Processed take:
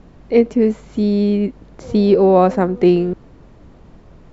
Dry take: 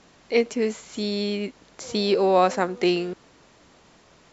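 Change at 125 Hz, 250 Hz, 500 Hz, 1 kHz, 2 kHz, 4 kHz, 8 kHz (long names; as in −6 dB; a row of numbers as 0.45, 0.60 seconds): +13.5 dB, +11.5 dB, +8.0 dB, +4.0 dB, −2.0 dB, −6.0 dB, can't be measured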